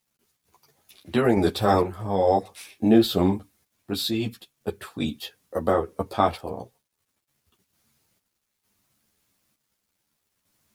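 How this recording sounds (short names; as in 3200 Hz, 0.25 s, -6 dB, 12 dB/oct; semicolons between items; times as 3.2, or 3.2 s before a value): random-step tremolo 2.2 Hz, depth 65%; a quantiser's noise floor 12-bit, dither none; a shimmering, thickened sound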